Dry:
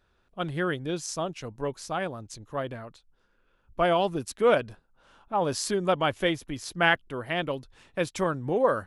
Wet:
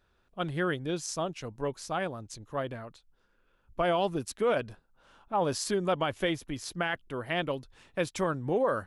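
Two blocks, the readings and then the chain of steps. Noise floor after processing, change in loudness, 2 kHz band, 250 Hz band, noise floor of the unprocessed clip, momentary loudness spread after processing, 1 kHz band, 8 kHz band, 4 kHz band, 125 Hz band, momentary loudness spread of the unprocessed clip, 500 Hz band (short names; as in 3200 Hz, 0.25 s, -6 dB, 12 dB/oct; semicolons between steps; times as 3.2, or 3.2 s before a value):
-70 dBFS, -3.5 dB, -5.5 dB, -2.5 dB, -69 dBFS, 10 LU, -4.0 dB, -2.0 dB, -4.0 dB, -2.0 dB, 13 LU, -3.5 dB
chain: limiter -17 dBFS, peak gain reduction 10.5 dB; gain -1.5 dB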